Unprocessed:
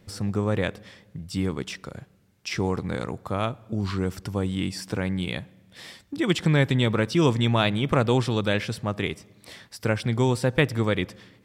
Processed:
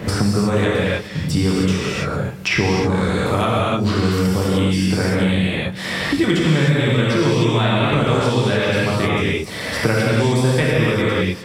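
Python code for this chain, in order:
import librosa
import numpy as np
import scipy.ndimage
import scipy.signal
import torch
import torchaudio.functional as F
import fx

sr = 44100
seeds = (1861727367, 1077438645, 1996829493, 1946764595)

y = fx.rev_gated(x, sr, seeds[0], gate_ms=330, shape='flat', drr_db=-7.5)
y = fx.band_squash(y, sr, depth_pct=100)
y = F.gain(torch.from_numpy(y), -1.0).numpy()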